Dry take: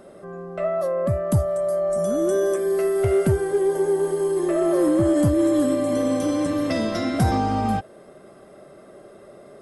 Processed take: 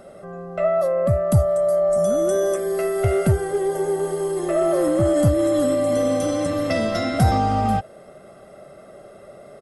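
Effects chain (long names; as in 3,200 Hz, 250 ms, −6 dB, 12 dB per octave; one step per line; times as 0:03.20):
comb filter 1.5 ms, depth 43%
level +1.5 dB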